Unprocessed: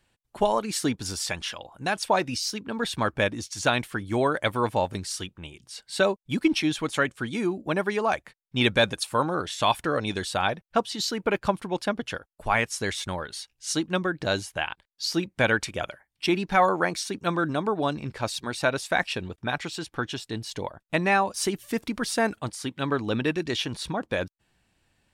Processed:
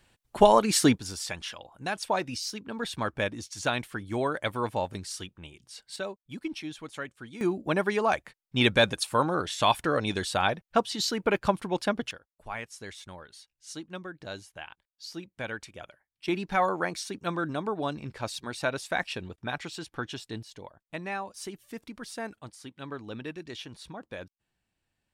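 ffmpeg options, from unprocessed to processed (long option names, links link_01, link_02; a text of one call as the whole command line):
ffmpeg -i in.wav -af "asetnsamples=nb_out_samples=441:pad=0,asendcmd='0.98 volume volume -5dB;5.96 volume volume -13dB;7.41 volume volume -0.5dB;12.11 volume volume -13.5dB;16.28 volume volume -5dB;20.43 volume volume -12.5dB',volume=5dB" out.wav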